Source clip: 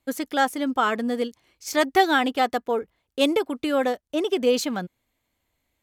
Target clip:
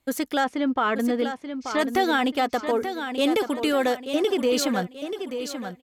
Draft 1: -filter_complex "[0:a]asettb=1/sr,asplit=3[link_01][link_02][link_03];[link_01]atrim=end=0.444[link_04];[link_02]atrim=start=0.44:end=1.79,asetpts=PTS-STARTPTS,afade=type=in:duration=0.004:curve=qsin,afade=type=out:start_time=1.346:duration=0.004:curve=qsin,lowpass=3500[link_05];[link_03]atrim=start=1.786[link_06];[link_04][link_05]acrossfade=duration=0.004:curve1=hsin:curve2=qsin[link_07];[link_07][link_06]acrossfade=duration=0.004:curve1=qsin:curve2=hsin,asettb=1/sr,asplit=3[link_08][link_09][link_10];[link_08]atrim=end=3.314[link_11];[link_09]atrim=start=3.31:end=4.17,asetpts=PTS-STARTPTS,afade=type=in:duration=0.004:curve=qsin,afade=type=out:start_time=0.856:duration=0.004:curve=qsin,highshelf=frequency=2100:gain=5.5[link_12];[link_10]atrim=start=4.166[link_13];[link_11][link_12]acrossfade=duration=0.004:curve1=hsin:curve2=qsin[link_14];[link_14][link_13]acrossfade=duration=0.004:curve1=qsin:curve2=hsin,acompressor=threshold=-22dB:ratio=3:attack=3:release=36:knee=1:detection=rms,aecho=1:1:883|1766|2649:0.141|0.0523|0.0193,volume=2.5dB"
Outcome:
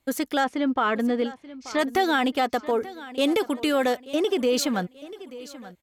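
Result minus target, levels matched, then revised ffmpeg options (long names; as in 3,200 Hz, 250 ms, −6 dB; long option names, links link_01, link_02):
echo-to-direct −8.5 dB
-filter_complex "[0:a]asettb=1/sr,asplit=3[link_01][link_02][link_03];[link_01]atrim=end=0.444[link_04];[link_02]atrim=start=0.44:end=1.79,asetpts=PTS-STARTPTS,afade=type=in:duration=0.004:curve=qsin,afade=type=out:start_time=1.346:duration=0.004:curve=qsin,lowpass=3500[link_05];[link_03]atrim=start=1.786[link_06];[link_04][link_05]acrossfade=duration=0.004:curve1=hsin:curve2=qsin[link_07];[link_07][link_06]acrossfade=duration=0.004:curve1=qsin:curve2=hsin,asettb=1/sr,asplit=3[link_08][link_09][link_10];[link_08]atrim=end=3.314[link_11];[link_09]atrim=start=3.31:end=4.17,asetpts=PTS-STARTPTS,afade=type=in:duration=0.004:curve=qsin,afade=type=out:start_time=0.856:duration=0.004:curve=qsin,highshelf=frequency=2100:gain=5.5[link_12];[link_10]atrim=start=4.166[link_13];[link_11][link_12]acrossfade=duration=0.004:curve1=hsin:curve2=qsin[link_14];[link_14][link_13]acrossfade=duration=0.004:curve1=qsin:curve2=hsin,acompressor=threshold=-22dB:ratio=3:attack=3:release=36:knee=1:detection=rms,aecho=1:1:883|1766|2649|3532:0.376|0.139|0.0515|0.019,volume=2.5dB"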